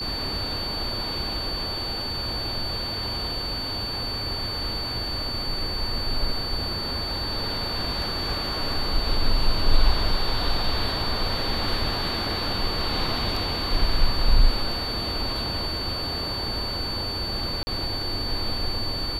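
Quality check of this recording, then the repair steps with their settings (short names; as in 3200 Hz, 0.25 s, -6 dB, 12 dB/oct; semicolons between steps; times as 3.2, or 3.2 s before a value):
tone 4500 Hz -29 dBFS
17.63–17.67 gap 40 ms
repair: notch 4500 Hz, Q 30; interpolate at 17.63, 40 ms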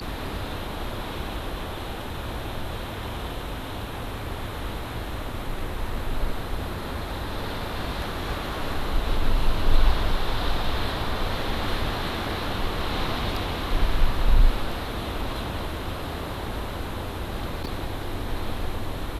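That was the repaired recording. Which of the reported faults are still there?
none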